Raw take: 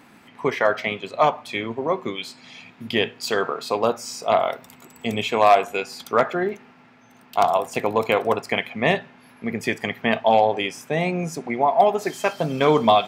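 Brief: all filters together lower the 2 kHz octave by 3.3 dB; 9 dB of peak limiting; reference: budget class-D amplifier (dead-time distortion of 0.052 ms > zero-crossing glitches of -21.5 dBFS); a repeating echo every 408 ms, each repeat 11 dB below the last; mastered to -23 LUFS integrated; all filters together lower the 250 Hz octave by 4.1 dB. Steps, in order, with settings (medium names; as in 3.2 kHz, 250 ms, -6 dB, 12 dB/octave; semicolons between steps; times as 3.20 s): peaking EQ 250 Hz -5.5 dB; peaking EQ 2 kHz -4 dB; peak limiter -14.5 dBFS; feedback delay 408 ms, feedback 28%, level -11 dB; dead-time distortion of 0.052 ms; zero-crossing glitches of -21.5 dBFS; trim +4 dB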